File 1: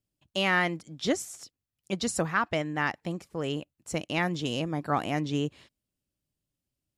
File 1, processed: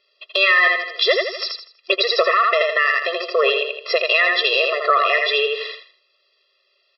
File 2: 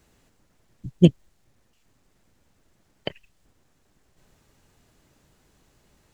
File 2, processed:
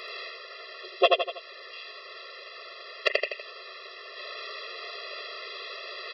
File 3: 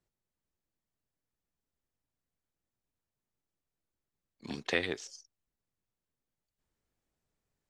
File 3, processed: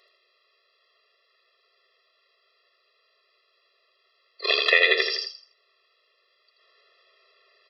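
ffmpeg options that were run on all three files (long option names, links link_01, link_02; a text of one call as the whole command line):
ffmpeg -i in.wav -filter_complex "[0:a]aresample=11025,aeval=exprs='0.891*sin(PI/2*2.24*val(0)/0.891)':channel_layout=same,aresample=44100,tiltshelf=frequency=700:gain=-8.5,asplit=2[link_01][link_02];[link_02]aecho=0:1:81|162|243|324:0.562|0.174|0.054|0.0168[link_03];[link_01][link_03]amix=inputs=2:normalize=0,acompressor=threshold=-29dB:ratio=3,alimiter=level_in=15.5dB:limit=-1dB:release=50:level=0:latency=1,afftfilt=real='re*eq(mod(floor(b*sr/1024/350),2),1)':imag='im*eq(mod(floor(b*sr/1024/350),2),1)':win_size=1024:overlap=0.75" out.wav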